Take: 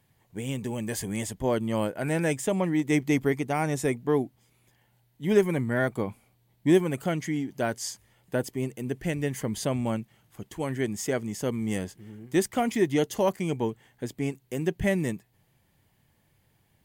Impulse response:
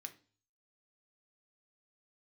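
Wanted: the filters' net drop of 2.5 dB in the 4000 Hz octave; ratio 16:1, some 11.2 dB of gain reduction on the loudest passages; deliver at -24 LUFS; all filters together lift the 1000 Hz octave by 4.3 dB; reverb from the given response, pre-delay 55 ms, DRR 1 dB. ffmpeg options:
-filter_complex "[0:a]equalizer=f=1k:t=o:g=6,equalizer=f=4k:t=o:g=-4,acompressor=threshold=-25dB:ratio=16,asplit=2[a][b];[1:a]atrim=start_sample=2205,adelay=55[c];[b][c]afir=irnorm=-1:irlink=0,volume=3.5dB[d];[a][d]amix=inputs=2:normalize=0,volume=6.5dB"

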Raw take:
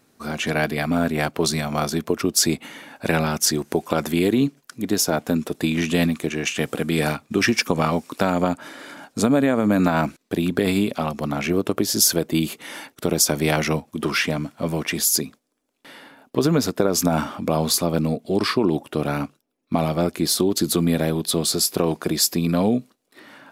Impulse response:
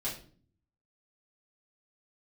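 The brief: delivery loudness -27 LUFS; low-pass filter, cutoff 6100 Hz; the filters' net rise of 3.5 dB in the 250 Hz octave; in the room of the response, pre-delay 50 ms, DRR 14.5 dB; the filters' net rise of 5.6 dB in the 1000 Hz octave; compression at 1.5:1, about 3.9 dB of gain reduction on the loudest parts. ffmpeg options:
-filter_complex "[0:a]lowpass=6.1k,equalizer=f=250:t=o:g=4,equalizer=f=1k:t=o:g=7.5,acompressor=threshold=-22dB:ratio=1.5,asplit=2[a][b];[1:a]atrim=start_sample=2205,adelay=50[c];[b][c]afir=irnorm=-1:irlink=0,volume=-17.5dB[d];[a][d]amix=inputs=2:normalize=0,volume=-4.5dB"

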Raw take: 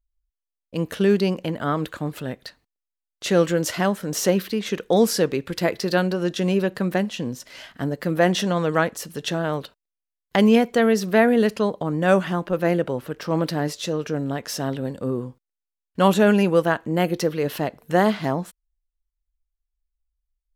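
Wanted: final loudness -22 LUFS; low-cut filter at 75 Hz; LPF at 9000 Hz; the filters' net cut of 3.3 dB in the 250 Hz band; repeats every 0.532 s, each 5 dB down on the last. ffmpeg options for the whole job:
-af "highpass=75,lowpass=9k,equalizer=f=250:t=o:g=-4.5,aecho=1:1:532|1064|1596|2128|2660|3192|3724:0.562|0.315|0.176|0.0988|0.0553|0.031|0.0173,volume=1dB"

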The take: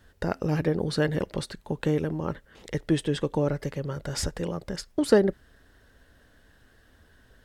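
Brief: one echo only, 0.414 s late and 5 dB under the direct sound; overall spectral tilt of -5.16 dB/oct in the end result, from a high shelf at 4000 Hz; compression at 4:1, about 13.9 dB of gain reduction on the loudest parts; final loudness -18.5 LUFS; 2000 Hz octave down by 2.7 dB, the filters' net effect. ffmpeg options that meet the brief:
-af "equalizer=f=2k:t=o:g=-4.5,highshelf=f=4k:g=4.5,acompressor=threshold=-30dB:ratio=4,aecho=1:1:414:0.562,volume=15.5dB"

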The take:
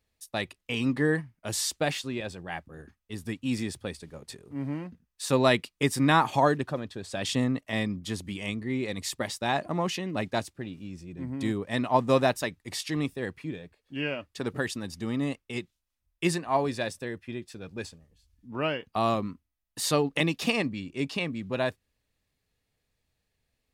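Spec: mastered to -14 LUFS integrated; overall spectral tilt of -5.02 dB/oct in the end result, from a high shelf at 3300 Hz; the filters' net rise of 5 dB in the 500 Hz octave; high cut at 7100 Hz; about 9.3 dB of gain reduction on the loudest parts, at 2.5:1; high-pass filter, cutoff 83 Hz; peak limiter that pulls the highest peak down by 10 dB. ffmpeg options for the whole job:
-af "highpass=83,lowpass=7.1k,equalizer=f=500:t=o:g=6.5,highshelf=f=3.3k:g=-7.5,acompressor=threshold=-28dB:ratio=2.5,volume=22dB,alimiter=limit=-2dB:level=0:latency=1"

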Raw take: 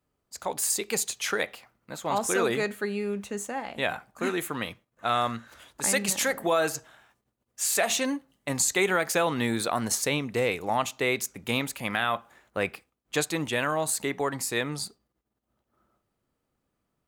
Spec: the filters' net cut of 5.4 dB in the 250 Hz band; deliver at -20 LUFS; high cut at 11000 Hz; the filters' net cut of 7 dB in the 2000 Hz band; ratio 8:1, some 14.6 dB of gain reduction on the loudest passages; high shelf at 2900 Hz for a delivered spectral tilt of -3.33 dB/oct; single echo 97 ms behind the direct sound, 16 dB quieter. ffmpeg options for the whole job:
-af "lowpass=11k,equalizer=f=250:t=o:g=-7,equalizer=f=2k:t=o:g=-5.5,highshelf=f=2.9k:g=-8.5,acompressor=threshold=-39dB:ratio=8,aecho=1:1:97:0.158,volume=23.5dB"

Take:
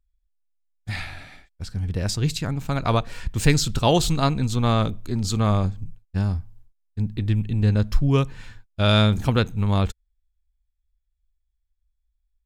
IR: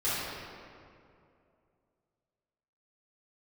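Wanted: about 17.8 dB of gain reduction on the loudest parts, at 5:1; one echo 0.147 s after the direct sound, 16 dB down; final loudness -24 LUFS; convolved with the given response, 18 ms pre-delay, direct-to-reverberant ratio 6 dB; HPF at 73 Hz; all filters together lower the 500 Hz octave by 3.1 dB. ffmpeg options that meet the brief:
-filter_complex "[0:a]highpass=73,equalizer=f=500:t=o:g=-4,acompressor=threshold=-36dB:ratio=5,aecho=1:1:147:0.158,asplit=2[a][b];[1:a]atrim=start_sample=2205,adelay=18[c];[b][c]afir=irnorm=-1:irlink=0,volume=-16.5dB[d];[a][d]amix=inputs=2:normalize=0,volume=13.5dB"

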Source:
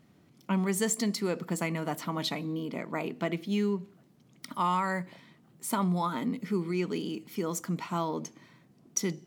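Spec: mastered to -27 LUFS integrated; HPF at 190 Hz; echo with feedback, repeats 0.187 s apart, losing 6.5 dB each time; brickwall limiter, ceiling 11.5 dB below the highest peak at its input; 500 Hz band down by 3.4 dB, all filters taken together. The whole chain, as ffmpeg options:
-af "highpass=190,equalizer=f=500:t=o:g=-4.5,alimiter=level_in=1.5dB:limit=-24dB:level=0:latency=1,volume=-1.5dB,aecho=1:1:187|374|561|748|935|1122:0.473|0.222|0.105|0.0491|0.0231|0.0109,volume=8.5dB"

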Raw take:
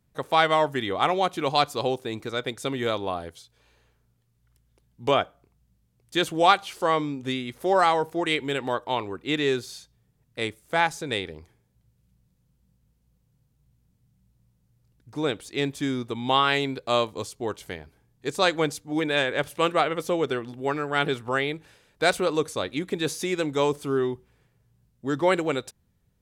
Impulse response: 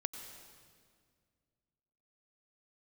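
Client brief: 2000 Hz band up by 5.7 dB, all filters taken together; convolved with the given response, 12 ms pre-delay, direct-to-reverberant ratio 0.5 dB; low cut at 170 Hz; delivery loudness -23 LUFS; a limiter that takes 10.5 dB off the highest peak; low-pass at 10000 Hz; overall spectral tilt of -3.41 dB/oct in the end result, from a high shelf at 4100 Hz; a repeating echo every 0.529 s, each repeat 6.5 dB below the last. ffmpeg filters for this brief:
-filter_complex "[0:a]highpass=170,lowpass=10k,equalizer=f=2k:t=o:g=6.5,highshelf=f=4.1k:g=3.5,alimiter=limit=-11.5dB:level=0:latency=1,aecho=1:1:529|1058|1587|2116|2645|3174:0.473|0.222|0.105|0.0491|0.0231|0.0109,asplit=2[a][b];[1:a]atrim=start_sample=2205,adelay=12[c];[b][c]afir=irnorm=-1:irlink=0,volume=-0.5dB[d];[a][d]amix=inputs=2:normalize=0,volume=0.5dB"

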